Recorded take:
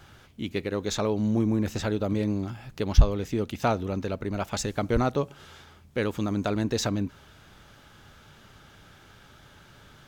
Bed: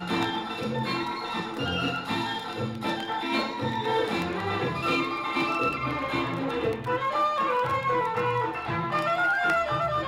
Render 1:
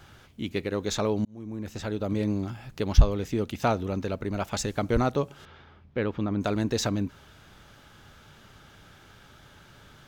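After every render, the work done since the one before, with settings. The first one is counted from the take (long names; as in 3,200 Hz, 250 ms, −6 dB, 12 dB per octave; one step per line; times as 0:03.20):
0:01.25–0:02.27: fade in
0:05.45–0:06.41: high-frequency loss of the air 280 metres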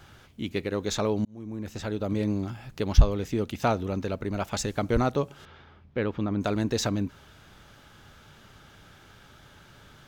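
no processing that can be heard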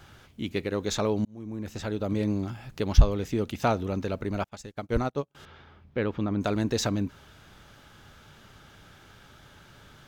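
0:04.44–0:05.35: expander for the loud parts 2.5 to 1, over −42 dBFS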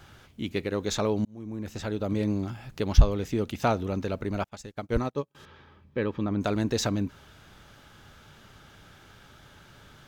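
0:04.99–0:06.26: notch comb filter 710 Hz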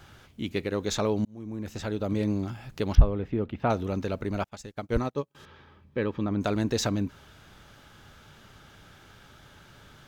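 0:02.95–0:03.70: high-frequency loss of the air 490 metres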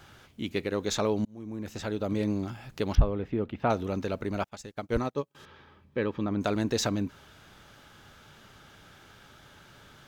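low-shelf EQ 130 Hz −5.5 dB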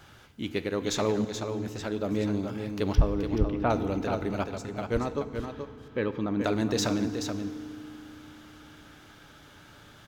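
single-tap delay 428 ms −7 dB
feedback delay network reverb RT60 2.5 s, low-frequency decay 1.55×, high-frequency decay 0.65×, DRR 11 dB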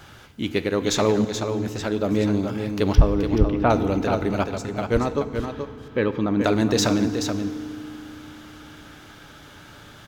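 level +7 dB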